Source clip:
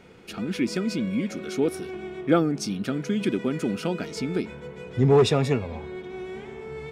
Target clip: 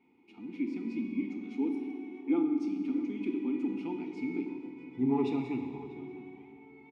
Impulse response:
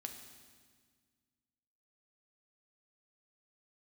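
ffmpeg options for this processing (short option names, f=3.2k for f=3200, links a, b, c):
-filter_complex "[0:a]asettb=1/sr,asplit=3[a][b][c];[a]atrim=end=1.214[d];[b]atrim=start=1.21:end=3.69,asetpts=PTS-STARTPTS,afade=t=in:d=0.004:c=qsin,afade=t=out:st=2.476:d=0.004:c=qsin,highpass=f=190:w=0.5412,highpass=f=190:w=1.3066[e];[c]atrim=start=3.686[f];[d][e]acrossfade=d=0.004:c1=hsin:c2=qsin[g];[g][f]acrossfade=d=0.004:c1=qsin:c2=hsin,dynaudnorm=f=100:g=17:m=5dB,asplit=3[h][i][j];[h]bandpass=f=300:t=q:w=8,volume=0dB[k];[i]bandpass=f=870:t=q:w=8,volume=-6dB[l];[j]bandpass=f=2.24k:t=q:w=8,volume=-9dB[m];[k][l][m]amix=inputs=3:normalize=0,asplit=2[n][o];[o]adelay=641.4,volume=-15dB,highshelf=f=4k:g=-14.4[p];[n][p]amix=inputs=2:normalize=0[q];[1:a]atrim=start_sample=2205[r];[q][r]afir=irnorm=-1:irlink=0"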